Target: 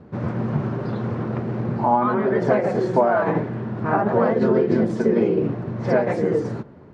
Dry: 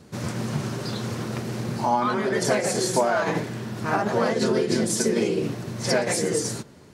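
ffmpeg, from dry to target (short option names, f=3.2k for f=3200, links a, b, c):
-af "lowpass=1.3k,volume=4.5dB"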